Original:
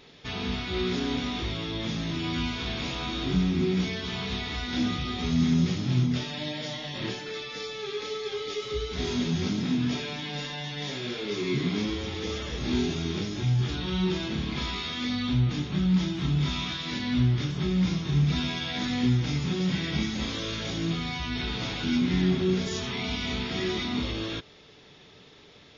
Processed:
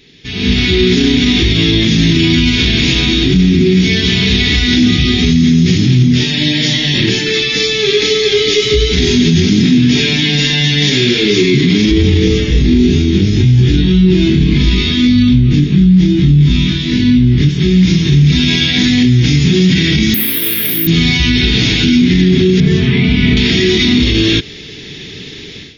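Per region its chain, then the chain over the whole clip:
11.91–17.49 s: tilt EQ -2 dB/octave + doubling 21 ms -3 dB
20.14–20.87 s: band-pass 140–2100 Hz + tilt EQ +2.5 dB/octave + careless resampling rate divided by 3×, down none, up zero stuff
22.60–23.37 s: low-pass 2.3 kHz + peaking EQ 150 Hz +13.5 dB 0.38 oct
whole clip: high-order bell 850 Hz -16 dB; level rider gain up to 16.5 dB; loudness maximiser +9.5 dB; trim -1 dB

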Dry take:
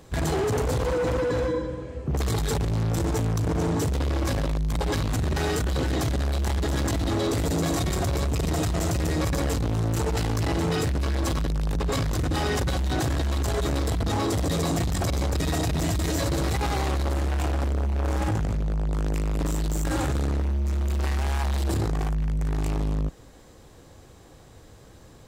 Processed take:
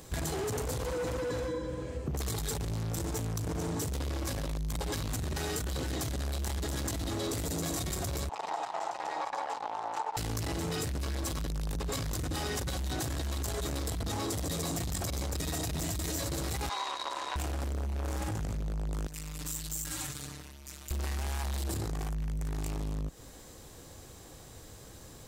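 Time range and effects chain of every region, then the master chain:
8.29–10.17 s: resonant high-pass 850 Hz, resonance Q 6.2 + tape spacing loss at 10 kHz 25 dB
16.69–17.36 s: band-pass 690–5800 Hz + small resonant body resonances 1/3.8 kHz, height 17 dB
19.07–20.91 s: amplifier tone stack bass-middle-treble 5-5-5 + comb 6.7 ms, depth 84%
whole clip: treble shelf 4.9 kHz +11.5 dB; compression, threshold -30 dBFS; trim -1.5 dB

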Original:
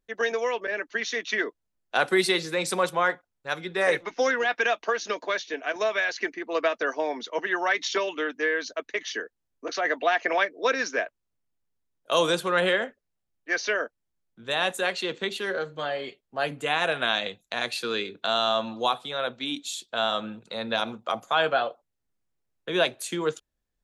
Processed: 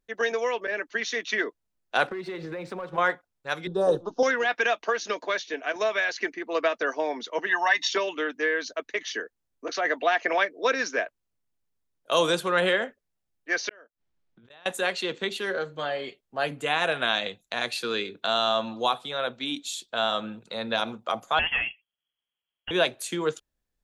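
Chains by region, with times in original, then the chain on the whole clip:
2.07–2.98 s: Bessel low-pass 1.4 kHz + waveshaping leveller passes 1 + compression 12:1, threshold -31 dBFS
3.67–4.23 s: Butterworth band-stop 2.1 kHz, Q 0.77 + tilt EQ -2.5 dB/octave
7.49–7.90 s: bass shelf 320 Hz -8.5 dB + comb 1.1 ms, depth 87%
13.69–14.66 s: low-pass 4.5 kHz + inverted gate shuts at -30 dBFS, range -27 dB + compressor with a negative ratio -54 dBFS
21.39–22.71 s: valve stage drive 19 dB, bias 0.35 + frequency inversion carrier 3.3 kHz
whole clip: none

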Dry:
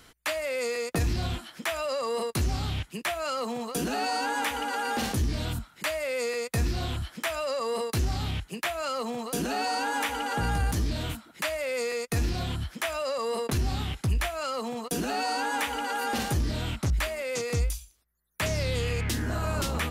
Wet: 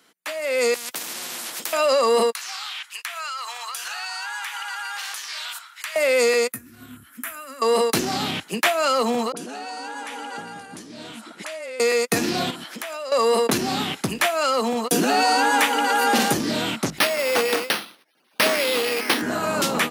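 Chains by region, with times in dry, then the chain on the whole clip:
0.74–1.73 s: compression 2:1, threshold -36 dBFS + spectrum-flattening compressor 10:1
2.32–5.96 s: high-pass 1.1 kHz 24 dB/octave + treble shelf 10 kHz -5.5 dB + compression 10:1, threshold -39 dBFS
6.52–7.62 s: FFT filter 110 Hz 0 dB, 180 Hz -27 dB, 250 Hz -3 dB, 380 Hz -26 dB, 800 Hz -25 dB, 1.4 kHz -9 dB, 2.2 kHz -15 dB, 4.7 kHz -24 dB, 12 kHz 0 dB + compression 12:1, threshold -36 dBFS
9.32–11.80 s: steep low-pass 11 kHz + compression 10:1, threshold -42 dBFS + phase dispersion highs, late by 44 ms, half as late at 900 Hz
12.50–13.12 s: high-pass 230 Hz + compression, threshold -41 dBFS
16.98–19.22 s: brick-wall FIR high-pass 220 Hz + treble shelf 5.3 kHz +9.5 dB + careless resampling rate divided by 6×, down none, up hold
whole clip: high-pass 190 Hz 24 dB/octave; level rider gain up to 16 dB; trim -4 dB

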